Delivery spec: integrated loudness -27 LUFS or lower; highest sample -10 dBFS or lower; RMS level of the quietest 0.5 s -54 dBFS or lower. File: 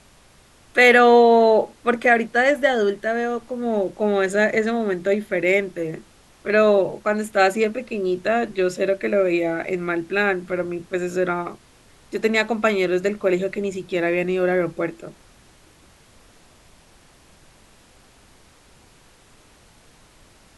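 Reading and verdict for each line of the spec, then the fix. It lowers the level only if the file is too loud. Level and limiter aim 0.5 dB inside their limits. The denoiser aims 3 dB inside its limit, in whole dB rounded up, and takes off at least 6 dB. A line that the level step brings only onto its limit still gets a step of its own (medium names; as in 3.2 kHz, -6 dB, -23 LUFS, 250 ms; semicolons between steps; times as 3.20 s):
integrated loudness -20.0 LUFS: fail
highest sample -2.5 dBFS: fail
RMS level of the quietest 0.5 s -52 dBFS: fail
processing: trim -7.5 dB; peak limiter -10.5 dBFS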